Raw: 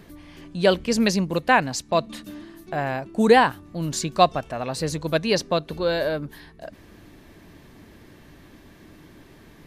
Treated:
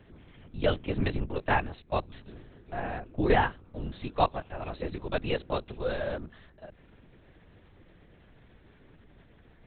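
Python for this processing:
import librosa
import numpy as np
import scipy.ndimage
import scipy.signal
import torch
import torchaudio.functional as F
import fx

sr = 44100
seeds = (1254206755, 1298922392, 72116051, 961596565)

y = fx.lpc_vocoder(x, sr, seeds[0], excitation='whisper', order=8)
y = y * 10.0 ** (-8.0 / 20.0)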